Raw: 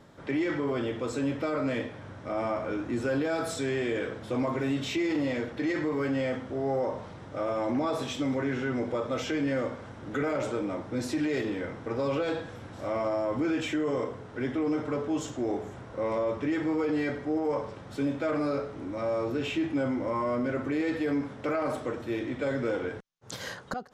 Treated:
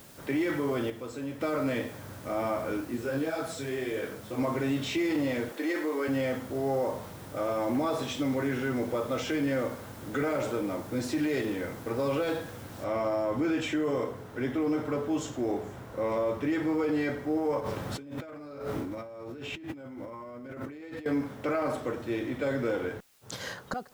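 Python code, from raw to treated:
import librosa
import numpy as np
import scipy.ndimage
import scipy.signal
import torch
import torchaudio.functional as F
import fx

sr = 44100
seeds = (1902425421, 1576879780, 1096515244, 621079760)

y = fx.detune_double(x, sr, cents=fx.line((2.8, 53.0), (4.37, 40.0)), at=(2.8, 4.37), fade=0.02)
y = fx.highpass(y, sr, hz=290.0, slope=24, at=(5.52, 6.08))
y = fx.noise_floor_step(y, sr, seeds[0], at_s=12.84, before_db=-54, after_db=-64, tilt_db=0.0)
y = fx.over_compress(y, sr, threshold_db=-40.0, ratio=-1.0, at=(17.6, 21.06))
y = fx.edit(y, sr, fx.clip_gain(start_s=0.9, length_s=0.51, db=-7.0), tone=tone)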